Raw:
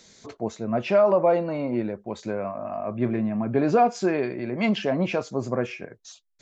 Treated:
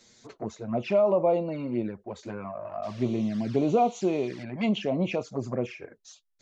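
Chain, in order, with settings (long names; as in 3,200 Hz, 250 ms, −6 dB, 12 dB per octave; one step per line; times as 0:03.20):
0:02.82–0:04.42: noise in a band 750–5,400 Hz −48 dBFS
flanger swept by the level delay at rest 9.5 ms, full sweep at −21 dBFS
level −2 dB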